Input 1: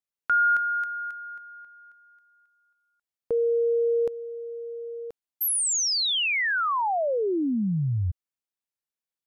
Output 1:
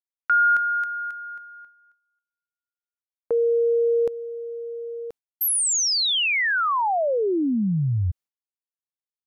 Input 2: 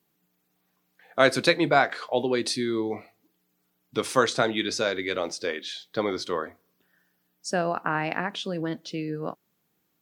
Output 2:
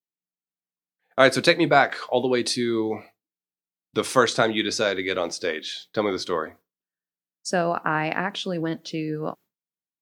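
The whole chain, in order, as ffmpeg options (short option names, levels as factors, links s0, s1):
-af "agate=range=0.0224:threshold=0.00708:ratio=3:release=255:detection=peak,volume=1.41"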